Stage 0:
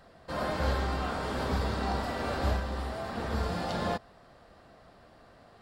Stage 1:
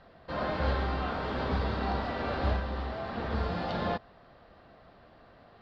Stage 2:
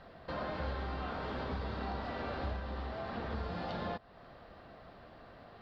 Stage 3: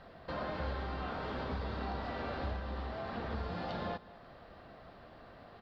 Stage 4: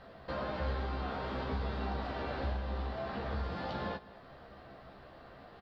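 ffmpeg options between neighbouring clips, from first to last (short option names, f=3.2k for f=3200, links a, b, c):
-af "lowpass=f=4.3k:w=0.5412,lowpass=f=4.3k:w=1.3066"
-af "acompressor=threshold=-42dB:ratio=2.5,volume=2dB"
-af "aecho=1:1:203:0.119"
-filter_complex "[0:a]asplit=2[a][b];[b]adelay=15,volume=-5dB[c];[a][c]amix=inputs=2:normalize=0"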